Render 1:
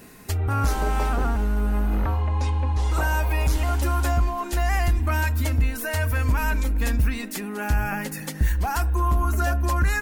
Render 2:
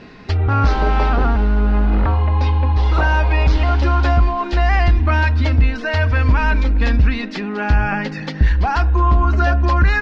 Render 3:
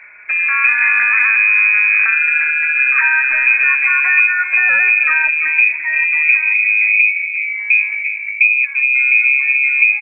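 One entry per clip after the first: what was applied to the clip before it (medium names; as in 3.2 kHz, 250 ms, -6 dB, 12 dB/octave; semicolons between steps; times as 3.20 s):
steep low-pass 4.8 kHz 36 dB/octave; trim +7.5 dB
low-pass sweep 920 Hz -> 300 Hz, 5.02–7.33 s; on a send: delay 342 ms -11.5 dB; on the sum: frequency inversion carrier 2.5 kHz; trim -1 dB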